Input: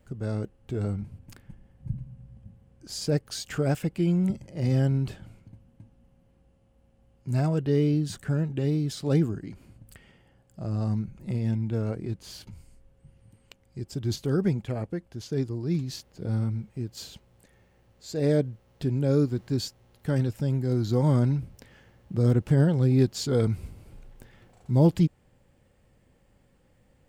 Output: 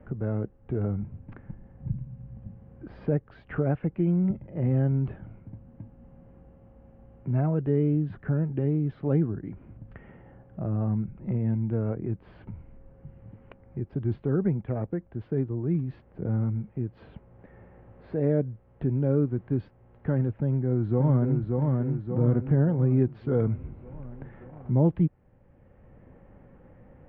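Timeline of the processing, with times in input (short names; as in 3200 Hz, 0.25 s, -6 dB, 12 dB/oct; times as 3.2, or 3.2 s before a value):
20.32–21.42 echo throw 0.58 s, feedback 50%, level -4 dB
whole clip: Bessel low-pass 1400 Hz, order 6; three-band squash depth 40%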